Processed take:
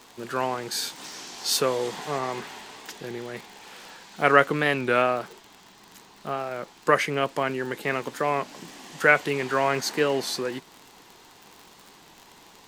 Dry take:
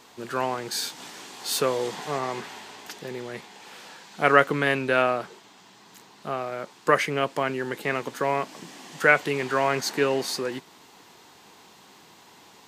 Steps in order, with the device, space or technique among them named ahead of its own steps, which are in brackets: warped LP (warped record 33 1/3 rpm, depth 100 cents; crackle 53 per s -34 dBFS; pink noise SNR 41 dB); 1.04–1.57 s: peaking EQ 5.4 kHz +7.5 dB 0.64 oct

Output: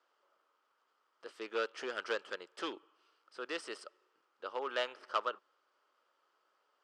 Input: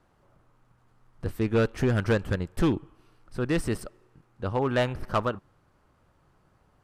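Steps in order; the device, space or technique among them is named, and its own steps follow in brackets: phone speaker on a table (cabinet simulation 430–8200 Hz, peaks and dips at 740 Hz -5 dB, 1.3 kHz +6 dB, 3.1 kHz +8 dB, 4.9 kHz +7 dB); trim -9 dB

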